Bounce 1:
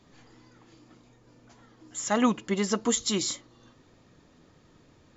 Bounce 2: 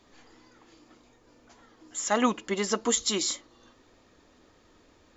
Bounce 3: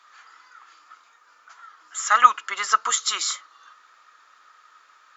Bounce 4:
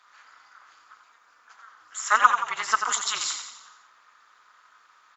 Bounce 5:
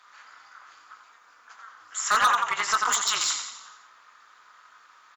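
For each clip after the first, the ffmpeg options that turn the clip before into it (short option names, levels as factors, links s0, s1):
-af "equalizer=f=140:t=o:w=0.98:g=-14.5,volume=1.19"
-af "highpass=f=1300:t=q:w=6.2,volume=1.41"
-filter_complex "[0:a]tremolo=f=220:d=0.947,asplit=7[s0][s1][s2][s3][s4][s5][s6];[s1]adelay=88,afreqshift=-32,volume=0.422[s7];[s2]adelay=176,afreqshift=-64,volume=0.216[s8];[s3]adelay=264,afreqshift=-96,volume=0.11[s9];[s4]adelay=352,afreqshift=-128,volume=0.0562[s10];[s5]adelay=440,afreqshift=-160,volume=0.0285[s11];[s6]adelay=528,afreqshift=-192,volume=0.0146[s12];[s0][s7][s8][s9][s10][s11][s12]amix=inputs=7:normalize=0"
-filter_complex "[0:a]asplit=2[s0][s1];[s1]adelay=20,volume=0.251[s2];[s0][s2]amix=inputs=2:normalize=0,asoftclip=type=hard:threshold=0.119,volume=1.41"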